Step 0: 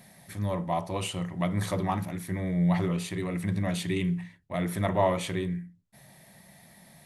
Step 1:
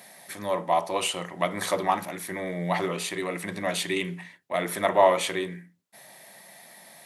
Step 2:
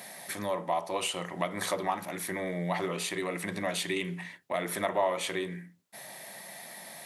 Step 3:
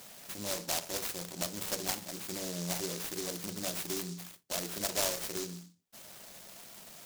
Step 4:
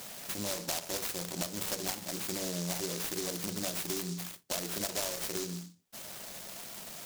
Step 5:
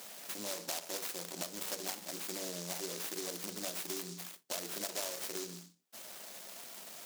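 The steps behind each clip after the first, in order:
HPF 410 Hz 12 dB/oct; gain +7 dB
compressor 2:1, threshold -39 dBFS, peak gain reduction 14 dB; gain +4 dB
noise-modulated delay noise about 5600 Hz, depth 0.27 ms; gain -4.5 dB
compressor 5:1, threshold -38 dBFS, peak gain reduction 10.5 dB; gain +6 dB
HPF 250 Hz 12 dB/oct; gain -4 dB

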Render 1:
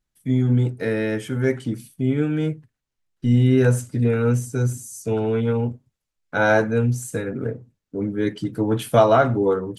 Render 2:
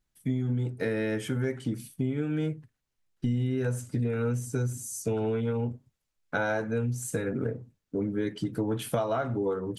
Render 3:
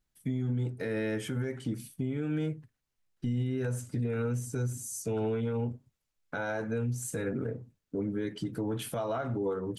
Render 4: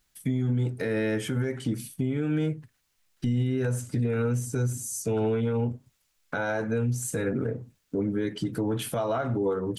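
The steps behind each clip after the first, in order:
compressor 6:1, threshold -26 dBFS, peak gain reduction 15.5 dB
limiter -22.5 dBFS, peak gain reduction 9 dB; gain -1.5 dB
mismatched tape noise reduction encoder only; gain +5 dB

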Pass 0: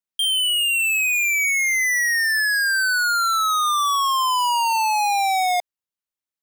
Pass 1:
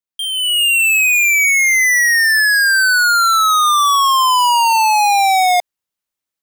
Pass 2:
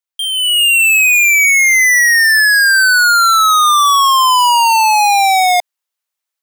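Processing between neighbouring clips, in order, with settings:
AGC gain up to 9.5 dB; gain -2 dB
HPF 610 Hz; gain +3 dB

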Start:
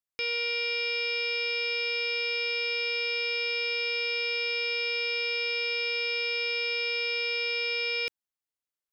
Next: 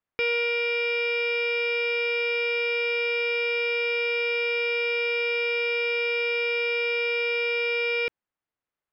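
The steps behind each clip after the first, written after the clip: LPF 2000 Hz 12 dB/oct; vocal rider 0.5 s; gain +8.5 dB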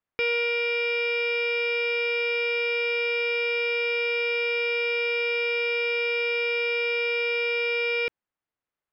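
nothing audible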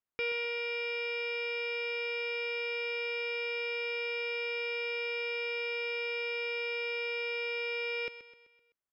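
feedback echo 0.128 s, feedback 48%, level -13 dB; gain -8 dB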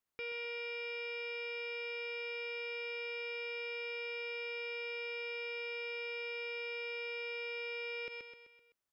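limiter -36.5 dBFS, peak gain reduction 12 dB; gain +3 dB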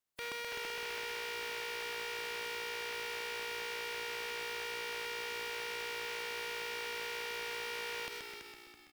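spectral contrast lowered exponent 0.39; on a send: frequency-shifting echo 0.33 s, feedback 38%, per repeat -58 Hz, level -7 dB; on the sum: Doppler distortion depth 0.63 ms

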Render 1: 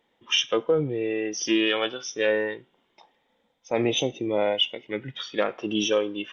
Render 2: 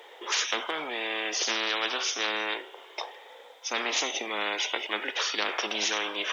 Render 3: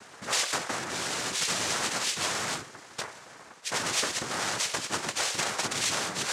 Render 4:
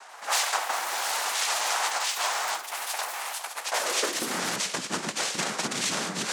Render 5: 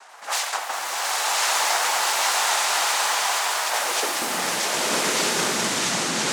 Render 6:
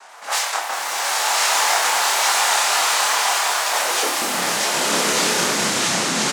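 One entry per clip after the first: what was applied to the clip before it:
elliptic high-pass 400 Hz, stop band 70 dB; spectral compressor 10:1
noise vocoder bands 3
echoes that change speed 88 ms, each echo +6 st, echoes 3, each echo -6 dB; high-pass sweep 800 Hz -> 190 Hz, 3.64–4.41
bloom reverb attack 1.21 s, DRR -5.5 dB
doubler 28 ms -3 dB; gain +2 dB

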